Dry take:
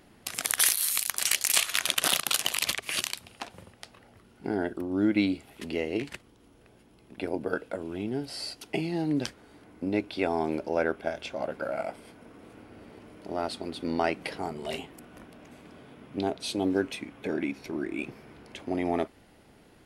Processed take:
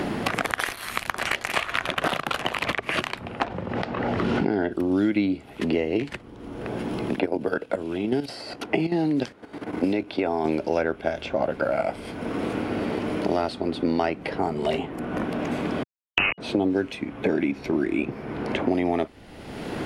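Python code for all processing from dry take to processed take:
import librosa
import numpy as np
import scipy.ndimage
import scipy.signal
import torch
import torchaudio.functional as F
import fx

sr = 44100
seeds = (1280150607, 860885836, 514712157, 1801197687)

y = fx.chain(x, sr, fx.air_absorb(metres=100.0),
    fx.pre_swell(db_per_s=40.0), at=(3.44, 4.72))
y = fx.chain(y, sr, fx.highpass(hz=180.0, slope=6),
    fx.level_steps(step_db=11), at=(7.16, 10.45))
y = fx.chain(y, sr, fx.delta_hold(step_db=-27.5),
    fx.leveller(passes=2),
    fx.freq_invert(carrier_hz=2900), at=(15.83, 16.38))
y = fx.lowpass(y, sr, hz=1400.0, slope=6)
y = fx.band_squash(y, sr, depth_pct=100)
y = y * librosa.db_to_amplitude(8.5)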